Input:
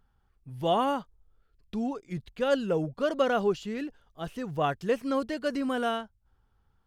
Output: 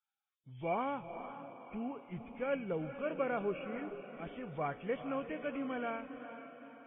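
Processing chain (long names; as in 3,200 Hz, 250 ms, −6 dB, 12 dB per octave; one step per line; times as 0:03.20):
hearing-aid frequency compression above 2,100 Hz 4 to 1
noise gate −59 dBFS, range −8 dB
tuned comb filter 61 Hz, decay 0.8 s, harmonics all, mix 40%
feedback delay with all-pass diffusion 453 ms, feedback 50%, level −10 dB
level −6 dB
Ogg Vorbis 32 kbit/s 16,000 Hz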